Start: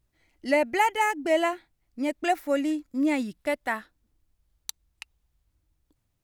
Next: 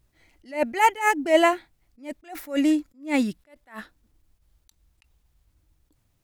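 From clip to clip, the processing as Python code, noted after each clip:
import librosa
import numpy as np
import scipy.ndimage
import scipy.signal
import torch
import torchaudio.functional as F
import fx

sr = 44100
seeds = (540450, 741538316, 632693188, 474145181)

y = fx.attack_slew(x, sr, db_per_s=190.0)
y = y * librosa.db_to_amplitude(7.0)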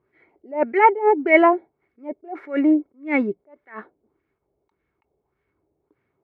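y = scipy.signal.sosfilt(scipy.signal.butter(2, 160.0, 'highpass', fs=sr, output='sos'), x)
y = fx.filter_lfo_lowpass(y, sr, shape='sine', hz=1.7, low_hz=630.0, high_hz=1800.0, q=2.3)
y = fx.small_body(y, sr, hz=(400.0, 2200.0), ring_ms=50, db=16)
y = y * librosa.db_to_amplitude(-1.0)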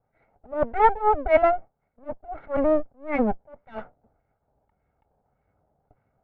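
y = fx.lower_of_two(x, sr, delay_ms=1.4)
y = scipy.signal.sosfilt(scipy.signal.butter(2, 1100.0, 'lowpass', fs=sr, output='sos'), y)
y = fx.rider(y, sr, range_db=3, speed_s=2.0)
y = y * librosa.db_to_amplitude(3.5)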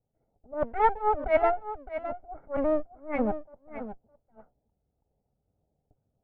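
y = fx.env_lowpass(x, sr, base_hz=470.0, full_db=-17.5)
y = y + 10.0 ** (-11.5 / 20.0) * np.pad(y, (int(612 * sr / 1000.0), 0))[:len(y)]
y = y * librosa.db_to_amplitude(-5.0)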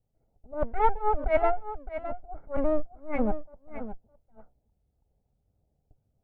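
y = fx.low_shelf(x, sr, hz=96.0, db=11.5)
y = fx.notch(y, sr, hz=1800.0, q=24.0)
y = y * librosa.db_to_amplitude(-1.5)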